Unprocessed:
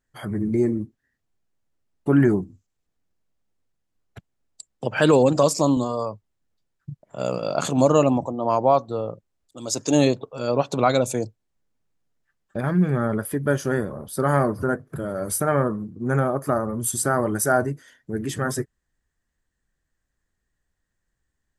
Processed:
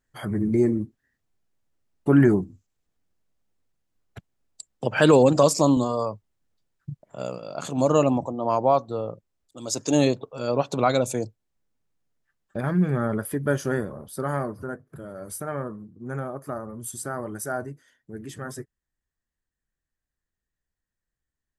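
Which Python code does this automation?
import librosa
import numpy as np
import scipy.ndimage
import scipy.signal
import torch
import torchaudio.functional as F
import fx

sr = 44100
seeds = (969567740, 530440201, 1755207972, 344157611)

y = fx.gain(x, sr, db=fx.line((7.03, 0.5), (7.46, -11.5), (7.94, -2.0), (13.71, -2.0), (14.65, -10.0)))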